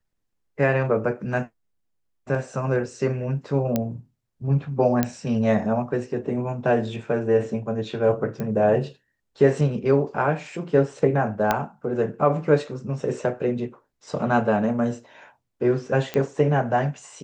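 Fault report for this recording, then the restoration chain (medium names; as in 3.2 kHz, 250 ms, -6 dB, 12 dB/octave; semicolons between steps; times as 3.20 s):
3.76 s: pop -9 dBFS
5.03 s: pop -7 dBFS
8.40 s: pop -17 dBFS
11.51 s: pop -6 dBFS
16.14 s: pop -13 dBFS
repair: de-click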